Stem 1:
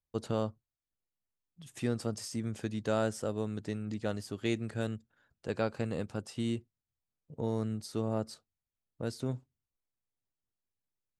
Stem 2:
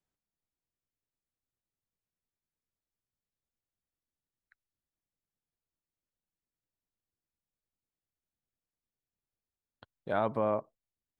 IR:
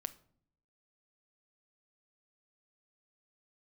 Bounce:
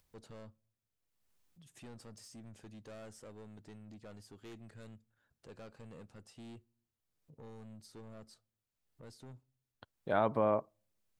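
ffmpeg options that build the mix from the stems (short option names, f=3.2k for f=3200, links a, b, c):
-filter_complex "[0:a]acompressor=mode=upward:threshold=-43dB:ratio=2.5,asoftclip=type=tanh:threshold=-35dB,volume=-13.5dB,asplit=2[a][b];[b]volume=-10.5dB[c];[1:a]volume=-1dB,asplit=3[d][e][f];[e]volume=-22dB[g];[f]apad=whole_len=493697[h];[a][h]sidechaincompress=threshold=-44dB:ratio=8:attack=16:release=796[i];[2:a]atrim=start_sample=2205[j];[c][g]amix=inputs=2:normalize=0[k];[k][j]afir=irnorm=-1:irlink=0[l];[i][d][l]amix=inputs=3:normalize=0"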